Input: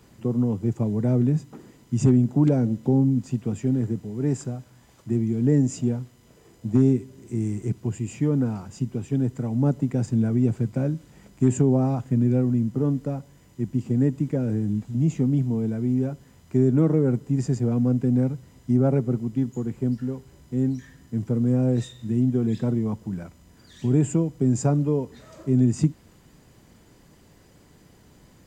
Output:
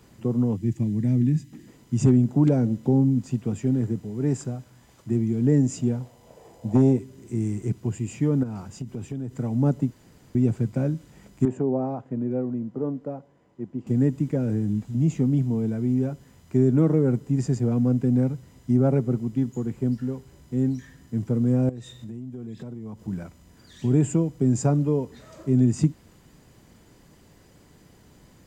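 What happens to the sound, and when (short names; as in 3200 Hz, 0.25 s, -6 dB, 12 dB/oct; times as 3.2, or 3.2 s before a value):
0.56–1.68 spectral gain 350–1600 Hz -13 dB
6–6.99 band shelf 680 Hz +11.5 dB 1.2 oct
8.43–9.33 compressor, threshold -28 dBFS
9.91–10.35 room tone
11.45–13.87 band-pass 590 Hz, Q 0.82
21.69–23.08 compressor, threshold -34 dBFS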